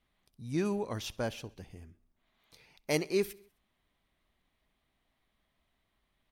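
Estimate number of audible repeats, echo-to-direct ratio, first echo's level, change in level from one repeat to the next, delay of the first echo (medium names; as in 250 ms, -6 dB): 3, -21.5 dB, -23.5 dB, -4.5 dB, 65 ms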